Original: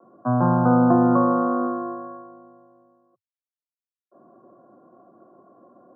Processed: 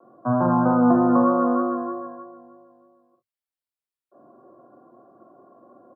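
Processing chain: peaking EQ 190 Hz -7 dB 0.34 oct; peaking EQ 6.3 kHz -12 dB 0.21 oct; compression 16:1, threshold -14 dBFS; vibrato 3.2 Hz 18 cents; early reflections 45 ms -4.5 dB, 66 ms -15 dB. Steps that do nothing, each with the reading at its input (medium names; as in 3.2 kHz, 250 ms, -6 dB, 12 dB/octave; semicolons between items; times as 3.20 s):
peaking EQ 6.3 kHz: input has nothing above 1.4 kHz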